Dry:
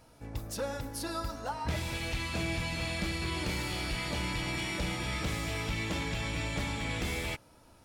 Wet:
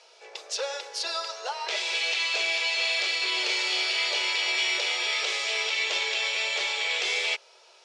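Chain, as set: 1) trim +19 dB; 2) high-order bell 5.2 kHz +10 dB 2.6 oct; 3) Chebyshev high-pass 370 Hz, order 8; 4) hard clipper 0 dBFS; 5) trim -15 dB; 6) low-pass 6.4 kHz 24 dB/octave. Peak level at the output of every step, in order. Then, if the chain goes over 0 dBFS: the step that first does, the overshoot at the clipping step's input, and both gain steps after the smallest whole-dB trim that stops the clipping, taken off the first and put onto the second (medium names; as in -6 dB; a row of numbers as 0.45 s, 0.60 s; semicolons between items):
-5.0 dBFS, +4.5 dBFS, +3.5 dBFS, 0.0 dBFS, -15.0 dBFS, -14.5 dBFS; step 2, 3.5 dB; step 1 +15 dB, step 5 -11 dB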